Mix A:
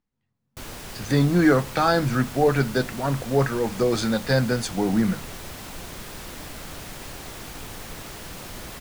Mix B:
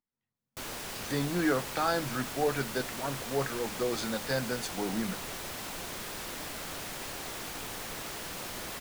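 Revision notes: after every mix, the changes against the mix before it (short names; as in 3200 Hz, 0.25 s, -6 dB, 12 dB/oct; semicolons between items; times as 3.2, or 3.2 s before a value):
speech -8.0 dB; master: add low shelf 180 Hz -11 dB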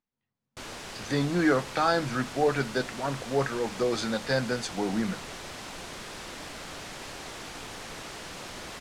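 speech +4.5 dB; master: add LPF 7600 Hz 12 dB/oct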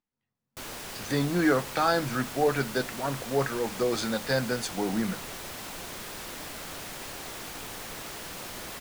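master: remove LPF 7600 Hz 12 dB/oct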